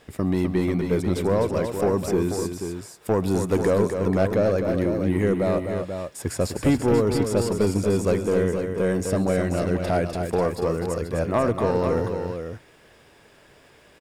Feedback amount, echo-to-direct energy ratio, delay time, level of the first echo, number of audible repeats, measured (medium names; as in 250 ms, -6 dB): no regular repeats, -4.0 dB, 135 ms, -19.5 dB, 3